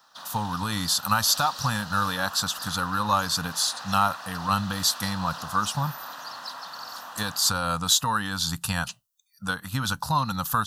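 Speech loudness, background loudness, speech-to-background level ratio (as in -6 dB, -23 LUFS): -25.5 LUFS, -38.0 LUFS, 12.5 dB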